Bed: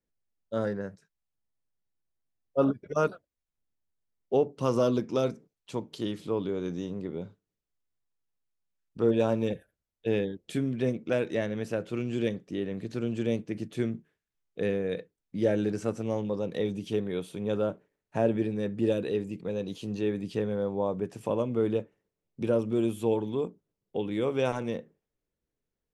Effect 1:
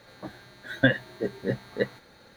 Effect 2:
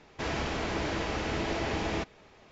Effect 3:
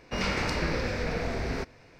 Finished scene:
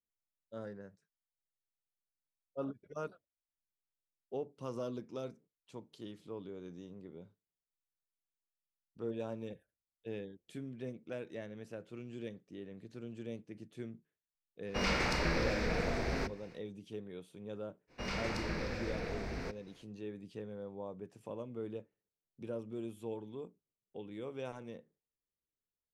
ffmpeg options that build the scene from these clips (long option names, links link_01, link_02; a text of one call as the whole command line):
ffmpeg -i bed.wav -i cue0.wav -i cue1.wav -i cue2.wav -filter_complex "[3:a]asplit=2[link_01][link_02];[0:a]volume=-15dB[link_03];[link_01]bandreject=frequency=50:width_type=h:width=6,bandreject=frequency=100:width_type=h:width=6,bandreject=frequency=150:width_type=h:width=6,bandreject=frequency=200:width_type=h:width=6,bandreject=frequency=250:width_type=h:width=6,bandreject=frequency=300:width_type=h:width=6,bandreject=frequency=350:width_type=h:width=6,bandreject=frequency=400:width_type=h:width=6,bandreject=frequency=450:width_type=h:width=6,bandreject=frequency=500:width_type=h:width=6,atrim=end=1.99,asetpts=PTS-STARTPTS,volume=-3dB,afade=type=in:duration=0.1,afade=type=out:start_time=1.89:duration=0.1,adelay=14630[link_04];[link_02]atrim=end=1.99,asetpts=PTS-STARTPTS,volume=-9.5dB,afade=type=in:duration=0.05,afade=type=out:start_time=1.94:duration=0.05,adelay=17870[link_05];[link_03][link_04][link_05]amix=inputs=3:normalize=0" out.wav